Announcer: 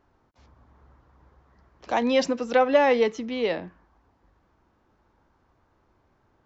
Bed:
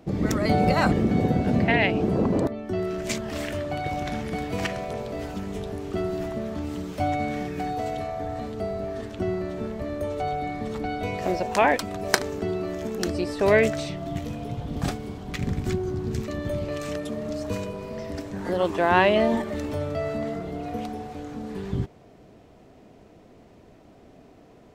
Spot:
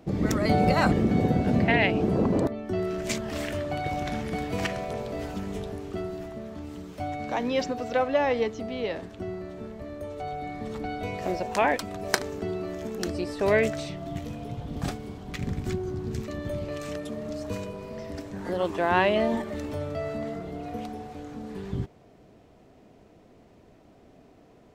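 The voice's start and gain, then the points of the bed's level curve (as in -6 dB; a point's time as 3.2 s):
5.40 s, -5.0 dB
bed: 5.54 s -1 dB
6.25 s -7.5 dB
10.12 s -7.5 dB
10.71 s -3.5 dB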